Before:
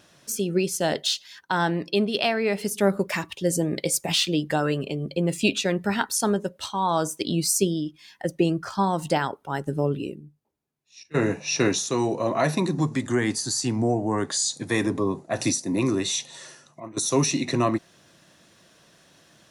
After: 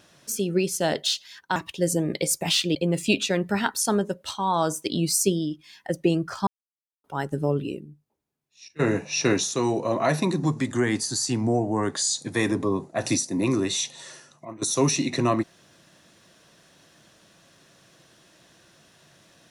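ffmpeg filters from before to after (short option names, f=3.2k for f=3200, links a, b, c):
-filter_complex "[0:a]asplit=5[a][b][c][d][e];[a]atrim=end=1.562[f];[b]atrim=start=3.188:end=4.382[g];[c]atrim=start=5.098:end=8.82,asetpts=PTS-STARTPTS,afade=t=out:st=3.718:d=0.004:c=hsin[h];[d]atrim=start=8.82:end=9.39,asetpts=PTS-STARTPTS,volume=0[i];[e]atrim=start=9.39,asetpts=PTS-STARTPTS,afade=t=in:d=0.004:c=hsin[j];[f][g]acrossfade=d=0.004:c1=hsin:c2=hsin[k];[h][i][j]concat=n=3:v=0:a=1[l];[k][l]acrossfade=d=0.004:c1=hsin:c2=hsin"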